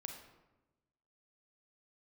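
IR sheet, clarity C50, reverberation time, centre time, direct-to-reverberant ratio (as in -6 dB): 5.0 dB, 1.1 s, 32 ms, 3.0 dB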